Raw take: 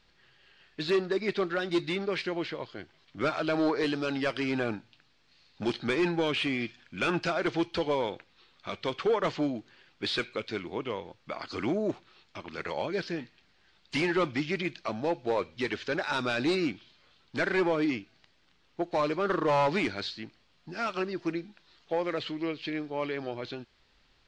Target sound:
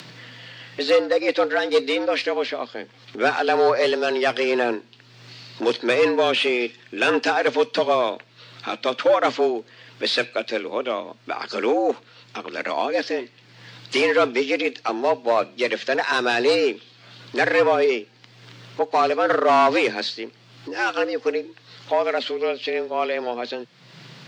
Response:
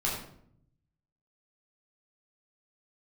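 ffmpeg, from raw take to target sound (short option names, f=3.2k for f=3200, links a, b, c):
-af "afreqshift=120,acompressor=mode=upward:threshold=-39dB:ratio=2.5,volume=9dB"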